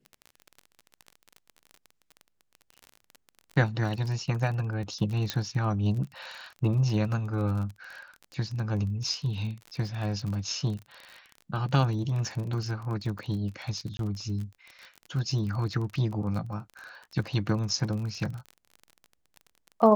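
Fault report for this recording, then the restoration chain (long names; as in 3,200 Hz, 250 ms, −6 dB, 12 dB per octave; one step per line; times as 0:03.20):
surface crackle 33 per second −35 dBFS
0:05.30: click −12 dBFS
0:13.97–0:13.99: drop-out 22 ms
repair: click removal
repair the gap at 0:13.97, 22 ms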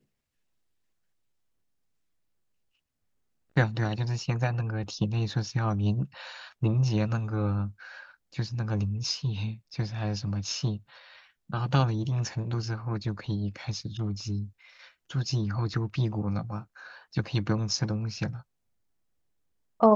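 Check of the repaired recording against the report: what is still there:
0:05.30: click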